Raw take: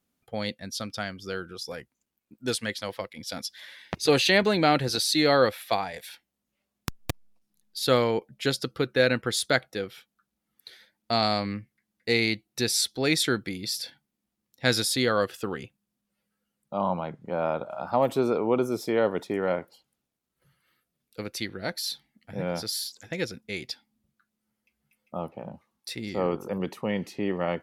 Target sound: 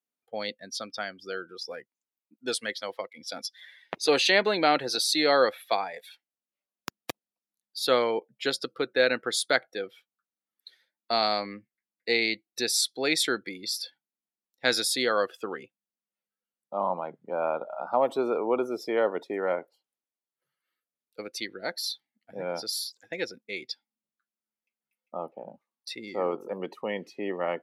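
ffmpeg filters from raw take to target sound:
-af "afftdn=nr=14:nf=-41,highpass=350"

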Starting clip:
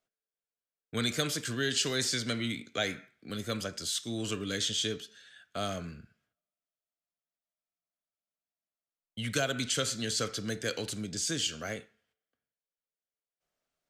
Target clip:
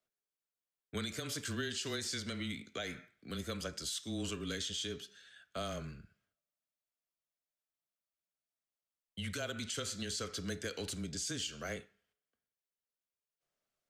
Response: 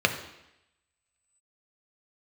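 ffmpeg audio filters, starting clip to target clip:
-af "afreqshift=-18,alimiter=level_in=1dB:limit=-24dB:level=0:latency=1:release=165,volume=-1dB,volume=-3.5dB"

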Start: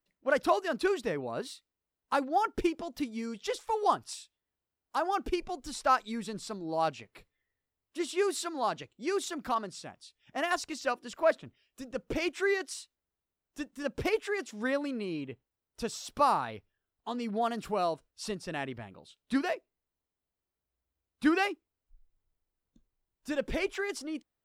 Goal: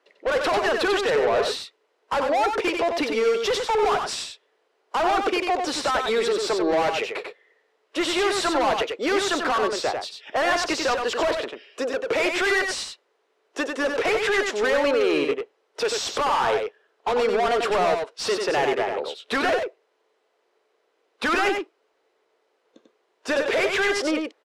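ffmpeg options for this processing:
-filter_complex "[0:a]highpass=f=430:t=q:w=3.4,acrossover=split=640|6200[a][b][c];[a]acompressor=threshold=-36dB:ratio=6[d];[d][b][c]amix=inputs=3:normalize=0,asplit=2[e][f];[f]highpass=f=720:p=1,volume=31dB,asoftclip=type=tanh:threshold=-12.5dB[g];[e][g]amix=inputs=2:normalize=0,lowpass=f=2.6k:p=1,volume=-6dB,alimiter=limit=-18dB:level=0:latency=1,adynamicsmooth=sensitivity=3.5:basefreq=7.3k,asplit=2[h][i];[i]aecho=0:1:94:0.562[j];[h][j]amix=inputs=2:normalize=0,aresample=32000,aresample=44100"

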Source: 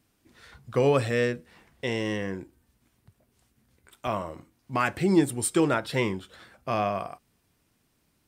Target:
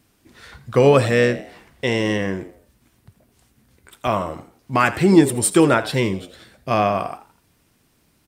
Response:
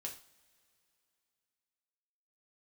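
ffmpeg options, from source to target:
-filter_complex "[0:a]asettb=1/sr,asplit=3[a][b][c];[a]atrim=end=5.914[d];[b]atrim=start=5.91:end=6.71,asetpts=PTS-STARTPTS,afade=t=in:d=0.004:c=qsin,afade=t=out:st=0.796:d=0.004:c=qsin,equalizer=f=1.1k:w=0.67:g=-9.5[e];[c]atrim=start=6.706[f];[d][e]acrossfade=d=0.004:c1=hsin:c2=qsin[g];[g][f]acrossfade=d=0.004:c1=qsin:c2=hsin,asplit=2[h][i];[i]asplit=3[j][k][l];[j]adelay=83,afreqshift=79,volume=-16dB[m];[k]adelay=166,afreqshift=158,volume=-24.4dB[n];[l]adelay=249,afreqshift=237,volume=-32.8dB[o];[m][n][o]amix=inputs=3:normalize=0[p];[h][p]amix=inputs=2:normalize=0,volume=8.5dB"

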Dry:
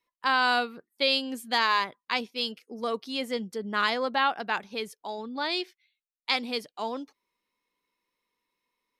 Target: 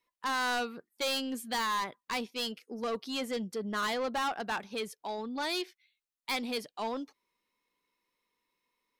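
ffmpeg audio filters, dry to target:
-af "asoftclip=type=tanh:threshold=-28dB"

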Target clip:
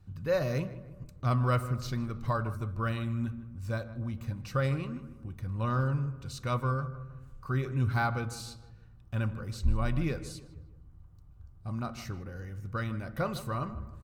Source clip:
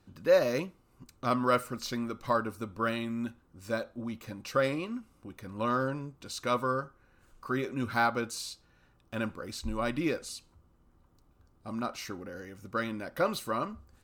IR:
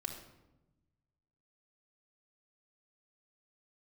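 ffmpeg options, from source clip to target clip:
-filter_complex "[0:a]lowshelf=f=190:t=q:w=1.5:g=13,asplit=2[a][b];[b]adelay=155,lowpass=f=2k:p=1,volume=-14dB,asplit=2[c][d];[d]adelay=155,lowpass=f=2k:p=1,volume=0.47,asplit=2[e][f];[f]adelay=155,lowpass=f=2k:p=1,volume=0.47,asplit=2[g][h];[h]adelay=155,lowpass=f=2k:p=1,volume=0.47[i];[a][c][e][g][i]amix=inputs=5:normalize=0,asplit=2[j][k];[1:a]atrim=start_sample=2205,lowpass=2.6k[l];[k][l]afir=irnorm=-1:irlink=0,volume=-9.5dB[m];[j][m]amix=inputs=2:normalize=0,volume=-5dB"

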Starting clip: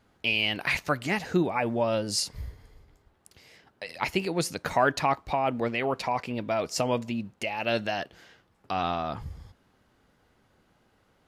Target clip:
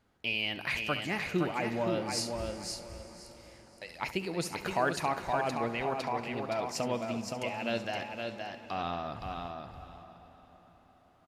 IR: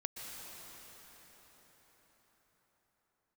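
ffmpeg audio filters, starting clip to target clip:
-filter_complex "[0:a]aecho=1:1:519|1038|1557:0.562|0.101|0.0182,asplit=2[a][b];[1:a]atrim=start_sample=2205,adelay=69[c];[b][c]afir=irnorm=-1:irlink=0,volume=-10.5dB[d];[a][d]amix=inputs=2:normalize=0,volume=-6.5dB"

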